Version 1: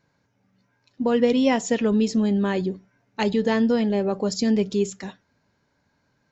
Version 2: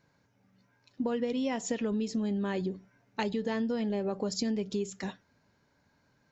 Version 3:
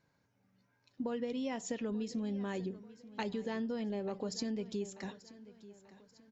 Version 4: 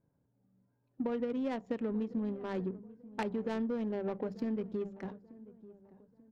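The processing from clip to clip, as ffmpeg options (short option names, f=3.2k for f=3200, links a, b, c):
-af "acompressor=threshold=-28dB:ratio=6,volume=-1dB"
-af "aecho=1:1:887|1774|2661:0.133|0.056|0.0235,volume=-6dB"
-af "bandreject=f=50:t=h:w=6,bandreject=f=100:t=h:w=6,bandreject=f=150:t=h:w=6,bandreject=f=200:t=h:w=6,adynamicsmooth=sensitivity=5.5:basefreq=600,volume=3dB"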